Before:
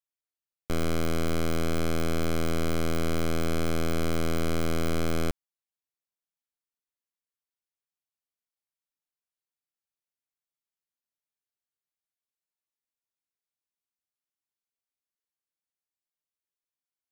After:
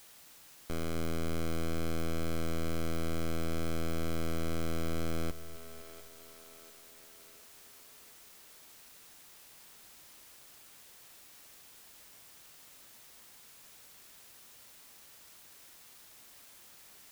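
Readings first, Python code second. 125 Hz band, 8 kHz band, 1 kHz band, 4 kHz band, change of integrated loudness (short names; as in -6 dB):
-6.5 dB, -4.5 dB, -7.5 dB, -6.5 dB, -8.0 dB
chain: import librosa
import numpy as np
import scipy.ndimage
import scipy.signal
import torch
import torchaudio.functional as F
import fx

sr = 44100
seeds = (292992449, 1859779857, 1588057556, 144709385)

y = fx.quant_dither(x, sr, seeds[0], bits=8, dither='triangular')
y = fx.echo_split(y, sr, split_hz=320.0, low_ms=254, high_ms=698, feedback_pct=52, wet_db=-13.5)
y = y * 10.0 ** (-8.0 / 20.0)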